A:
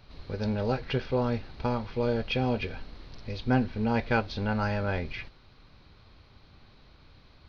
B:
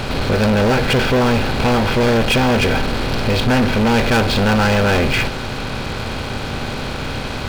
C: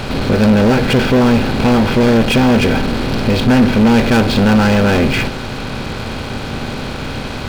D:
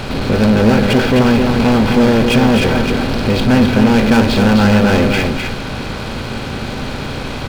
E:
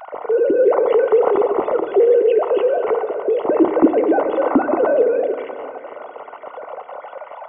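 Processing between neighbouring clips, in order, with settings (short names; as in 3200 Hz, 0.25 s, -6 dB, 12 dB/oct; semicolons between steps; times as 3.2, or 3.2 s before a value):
per-bin compression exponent 0.6; sample leveller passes 5
dynamic EQ 230 Hz, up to +7 dB, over -30 dBFS, Q 0.94
echo 0.258 s -5 dB; gain -1 dB
sine-wave speech; polynomial smoothing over 65 samples; reverb RT60 2.5 s, pre-delay 4 ms, DRR 8.5 dB; gain -4.5 dB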